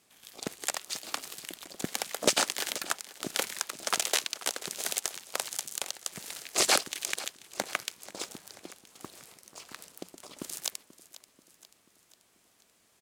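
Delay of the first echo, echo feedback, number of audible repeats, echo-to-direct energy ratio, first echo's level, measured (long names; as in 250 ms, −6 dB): 486 ms, 52%, 4, −15.5 dB, −17.0 dB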